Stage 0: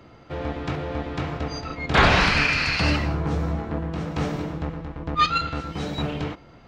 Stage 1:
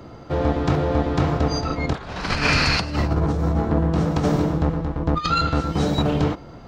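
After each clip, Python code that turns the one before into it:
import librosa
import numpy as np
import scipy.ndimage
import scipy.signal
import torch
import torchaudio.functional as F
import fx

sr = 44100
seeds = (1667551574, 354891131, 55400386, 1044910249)

y = fx.peak_eq(x, sr, hz=2400.0, db=-8.5, octaves=1.3)
y = fx.over_compress(y, sr, threshold_db=-26.0, ratio=-0.5)
y = y * 10.0 ** (7.0 / 20.0)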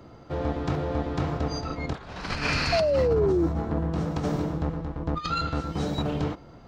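y = fx.spec_paint(x, sr, seeds[0], shape='fall', start_s=2.72, length_s=0.75, low_hz=320.0, high_hz=700.0, level_db=-15.0)
y = y * 10.0 ** (-7.5 / 20.0)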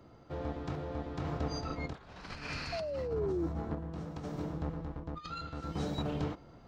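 y = fx.rider(x, sr, range_db=3, speed_s=0.5)
y = fx.tremolo_random(y, sr, seeds[1], hz=1.6, depth_pct=55)
y = y * 10.0 ** (-8.0 / 20.0)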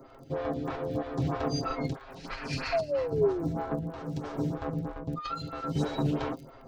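y = x + 0.73 * np.pad(x, (int(7.5 * sr / 1000.0), 0))[:len(x)]
y = fx.dmg_crackle(y, sr, seeds[2], per_s=25.0, level_db=-47.0)
y = fx.stagger_phaser(y, sr, hz=3.1)
y = y * 10.0 ** (7.5 / 20.0)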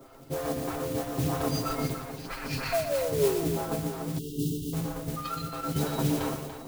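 y = fx.mod_noise(x, sr, seeds[3], snr_db=12)
y = fx.echo_multitap(y, sr, ms=(123, 288, 663), db=(-8.5, -10.0, -16.5))
y = fx.spec_erase(y, sr, start_s=4.19, length_s=0.54, low_hz=470.0, high_hz=2700.0)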